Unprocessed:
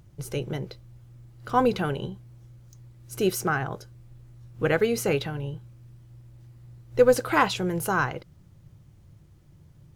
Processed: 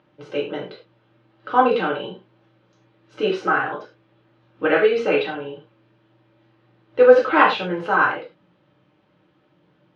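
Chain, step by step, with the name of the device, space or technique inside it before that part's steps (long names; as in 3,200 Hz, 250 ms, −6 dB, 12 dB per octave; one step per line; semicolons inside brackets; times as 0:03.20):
phone earpiece (loudspeaker in its box 430–3,100 Hz, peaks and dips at 690 Hz −5 dB, 1,000 Hz −3 dB, 2,100 Hz −7 dB)
reverb whose tail is shaped and stops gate 130 ms falling, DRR −4 dB
level +5 dB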